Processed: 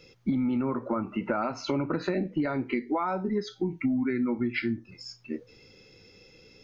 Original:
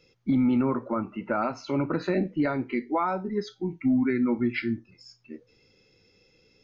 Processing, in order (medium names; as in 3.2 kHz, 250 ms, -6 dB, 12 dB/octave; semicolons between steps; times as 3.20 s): compression 6:1, threshold -33 dBFS, peak gain reduction 12.5 dB; trim +7.5 dB